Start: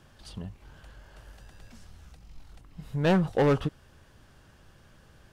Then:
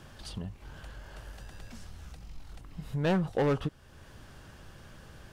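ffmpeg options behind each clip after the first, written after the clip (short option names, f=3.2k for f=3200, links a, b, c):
-af "acompressor=threshold=-50dB:ratio=1.5,volume=6dB"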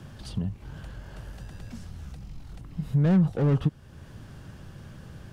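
-filter_complex "[0:a]equalizer=f=140:t=o:w=2.4:g=10.5,acrossover=split=240[a][b];[b]asoftclip=type=tanh:threshold=-26.5dB[c];[a][c]amix=inputs=2:normalize=0"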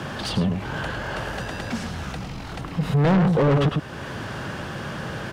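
-filter_complex "[0:a]asplit=2[a][b];[b]adelay=105,volume=-8dB,highshelf=f=4k:g=-2.36[c];[a][c]amix=inputs=2:normalize=0,asplit=2[d][e];[e]highpass=f=720:p=1,volume=30dB,asoftclip=type=tanh:threshold=-11dB[f];[d][f]amix=inputs=2:normalize=0,lowpass=f=2.2k:p=1,volume=-6dB"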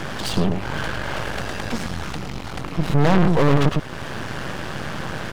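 -af "aeval=exprs='max(val(0),0)':c=same,volume=6.5dB"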